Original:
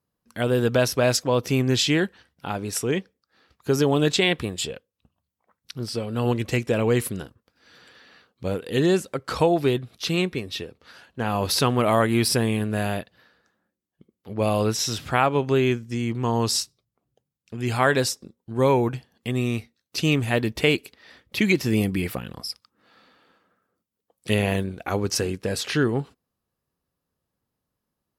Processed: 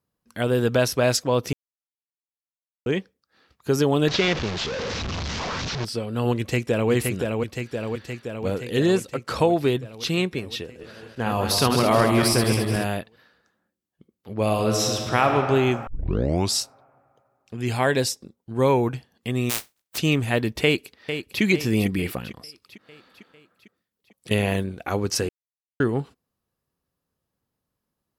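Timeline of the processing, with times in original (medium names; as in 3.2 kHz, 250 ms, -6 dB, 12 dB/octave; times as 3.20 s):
1.53–2.86 s: mute
4.08–5.85 s: one-bit delta coder 32 kbps, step -22.5 dBFS
6.36–6.91 s: echo throw 520 ms, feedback 70%, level -3.5 dB
10.62–12.84 s: backward echo that repeats 107 ms, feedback 66%, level -5 dB
14.42–15.28 s: reverb throw, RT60 2.7 s, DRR 2.5 dB
15.87 s: tape start 0.66 s
17.72–18.20 s: peaking EQ 1.3 kHz -7.5 dB 0.52 oct
19.49–19.97 s: spectral contrast reduction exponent 0.1
20.63–21.42 s: echo throw 450 ms, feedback 55%, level -9 dB
22.31–24.31 s: compression 4:1, threshold -39 dBFS
25.29–25.80 s: mute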